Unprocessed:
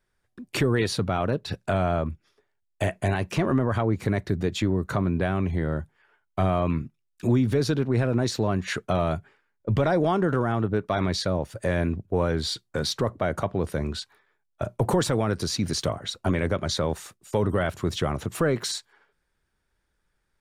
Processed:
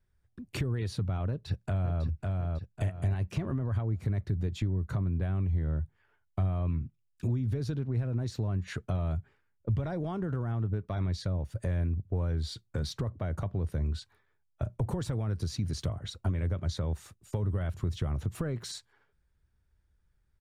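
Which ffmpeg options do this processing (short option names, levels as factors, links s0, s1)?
-filter_complex "[0:a]asplit=2[s0][s1];[s1]afade=t=in:st=1.29:d=0.01,afade=t=out:st=2.03:d=0.01,aecho=0:1:550|1100|1650|2200:0.530884|0.18581|0.0650333|0.0227617[s2];[s0][s2]amix=inputs=2:normalize=0,equalizer=f=78:t=o:w=1.9:g=10,acompressor=threshold=0.0447:ratio=3,lowshelf=f=160:g=10,volume=0.376"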